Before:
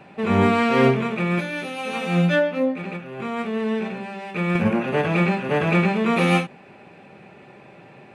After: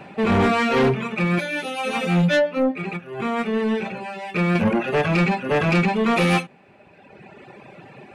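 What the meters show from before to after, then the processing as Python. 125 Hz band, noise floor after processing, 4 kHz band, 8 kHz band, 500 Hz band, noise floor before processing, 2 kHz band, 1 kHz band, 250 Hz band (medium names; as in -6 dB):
+0.5 dB, -51 dBFS, +2.5 dB, no reading, +0.5 dB, -47 dBFS, +1.0 dB, +1.0 dB, 0.0 dB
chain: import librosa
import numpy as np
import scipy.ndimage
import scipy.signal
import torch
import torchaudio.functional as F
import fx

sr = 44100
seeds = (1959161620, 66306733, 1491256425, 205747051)

y = fx.dereverb_blind(x, sr, rt60_s=1.5)
y = 10.0 ** (-19.5 / 20.0) * np.tanh(y / 10.0 ** (-19.5 / 20.0))
y = y * librosa.db_to_amplitude(6.0)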